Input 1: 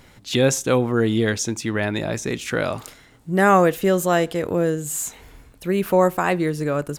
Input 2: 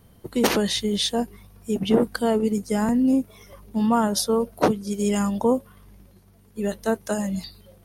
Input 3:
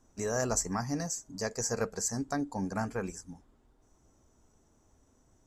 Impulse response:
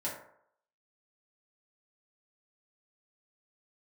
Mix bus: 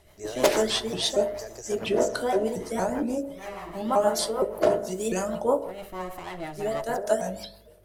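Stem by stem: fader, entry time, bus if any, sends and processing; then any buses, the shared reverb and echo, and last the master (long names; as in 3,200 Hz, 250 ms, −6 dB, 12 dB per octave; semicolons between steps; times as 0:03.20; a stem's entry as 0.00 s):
−7.0 dB, 0.00 s, bus A, send −18.5 dB, echo send −16.5 dB, lower of the sound and its delayed copy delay 1 ms; automatic ducking −21 dB, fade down 1.75 s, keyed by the third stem
−3.5 dB, 0.00 s, no bus, send −4.5 dB, no echo send, hum removal 56.13 Hz, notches 27; pitch modulation by a square or saw wave saw up 4.3 Hz, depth 250 cents
−2.5 dB, 0.00 s, bus A, no send, no echo send, no processing
bus A: 0.0 dB, brickwall limiter −25 dBFS, peak gain reduction 9 dB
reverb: on, RT60 0.70 s, pre-delay 3 ms
echo: repeating echo 67 ms, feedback 51%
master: parametric band 220 Hz −13 dB 2 octaves; rotating-speaker cabinet horn 6.3 Hz; hollow resonant body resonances 380/630 Hz, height 11 dB, ringing for 25 ms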